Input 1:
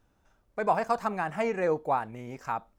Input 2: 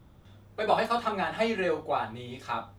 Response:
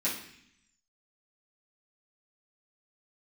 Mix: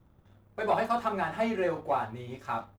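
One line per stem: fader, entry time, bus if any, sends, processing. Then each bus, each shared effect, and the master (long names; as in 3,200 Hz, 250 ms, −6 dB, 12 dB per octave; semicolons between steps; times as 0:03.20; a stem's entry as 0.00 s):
−9.0 dB, 0.00 s, no send, no processing
−5.0 dB, 1 ms, no send, parametric band 5,400 Hz −10 dB 2 octaves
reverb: not used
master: leveller curve on the samples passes 1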